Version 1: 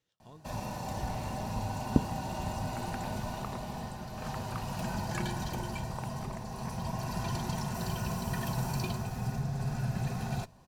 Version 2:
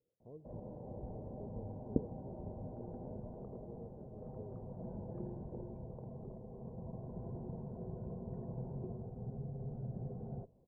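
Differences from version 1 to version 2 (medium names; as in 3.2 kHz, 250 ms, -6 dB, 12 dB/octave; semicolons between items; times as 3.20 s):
speech +7.0 dB; master: add four-pole ladder low-pass 540 Hz, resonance 60%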